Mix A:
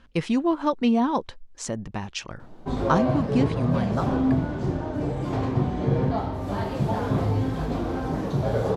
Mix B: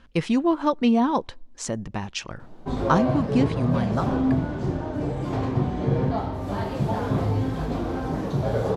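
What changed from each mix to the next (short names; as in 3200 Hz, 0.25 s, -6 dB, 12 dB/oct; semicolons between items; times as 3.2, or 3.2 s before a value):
speech: send on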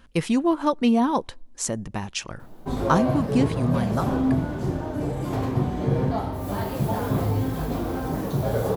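master: remove LPF 5800 Hz 12 dB/oct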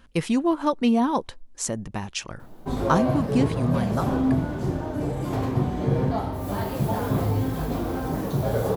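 speech: send -8.0 dB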